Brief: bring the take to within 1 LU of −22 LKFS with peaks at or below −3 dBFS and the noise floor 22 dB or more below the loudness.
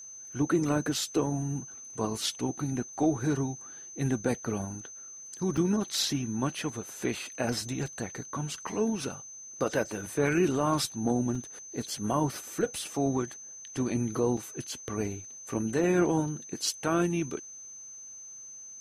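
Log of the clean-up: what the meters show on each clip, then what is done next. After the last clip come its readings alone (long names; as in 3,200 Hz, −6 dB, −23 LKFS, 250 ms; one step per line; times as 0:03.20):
number of dropouts 3; longest dropout 4.1 ms; interfering tone 6,200 Hz; level of the tone −43 dBFS; integrated loudness −31.0 LKFS; sample peak −15.0 dBFS; target loudness −22.0 LKFS
→ repair the gap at 0:05.57/0:11.35/0:14.37, 4.1 ms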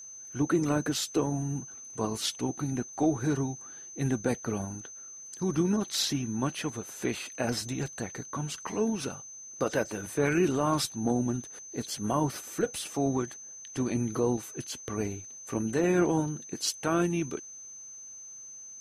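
number of dropouts 0; interfering tone 6,200 Hz; level of the tone −43 dBFS
→ notch filter 6,200 Hz, Q 30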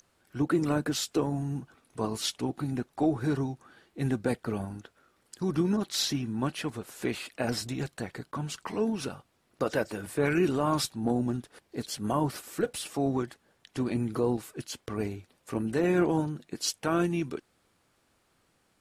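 interfering tone none found; integrated loudness −31.0 LKFS; sample peak −15.5 dBFS; target loudness −22.0 LKFS
→ level +9 dB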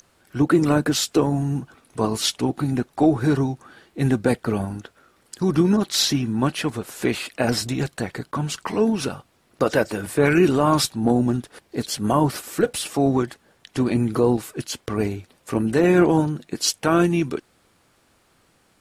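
integrated loudness −22.0 LKFS; sample peak −6.5 dBFS; background noise floor −62 dBFS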